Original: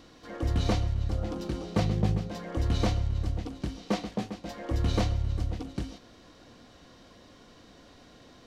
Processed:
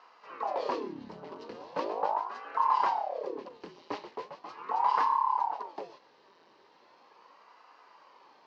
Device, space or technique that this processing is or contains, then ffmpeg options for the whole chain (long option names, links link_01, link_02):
voice changer toy: -af "aeval=exprs='val(0)*sin(2*PI*540*n/s+540*0.85/0.39*sin(2*PI*0.39*n/s))':channel_layout=same,highpass=470,equalizer=frequency=670:width_type=q:width=4:gain=-7,equalizer=frequency=1000:width_type=q:width=4:gain=7,equalizer=frequency=1400:width_type=q:width=4:gain=-5,equalizer=frequency=2300:width_type=q:width=4:gain=-3,equalizer=frequency=3500:width_type=q:width=4:gain=-9,lowpass=frequency=4500:width=0.5412,lowpass=frequency=4500:width=1.3066"